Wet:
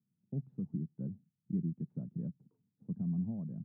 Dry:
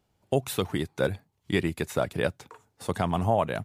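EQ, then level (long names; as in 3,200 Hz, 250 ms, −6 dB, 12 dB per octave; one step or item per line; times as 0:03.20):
flat-topped band-pass 180 Hz, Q 2
−2.5 dB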